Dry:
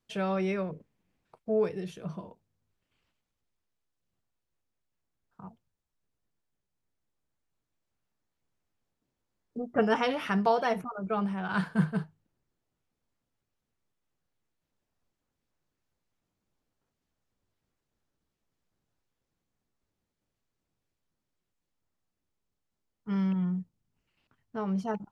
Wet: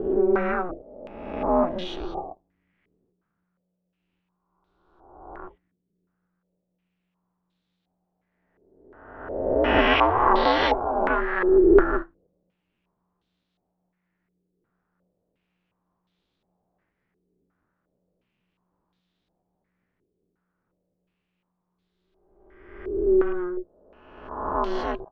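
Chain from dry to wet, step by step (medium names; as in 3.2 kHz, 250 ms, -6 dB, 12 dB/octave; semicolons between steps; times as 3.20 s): reverse spectral sustain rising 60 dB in 1.34 s; ring modulator 180 Hz; step-sequenced low-pass 2.8 Hz 400–3700 Hz; trim +5 dB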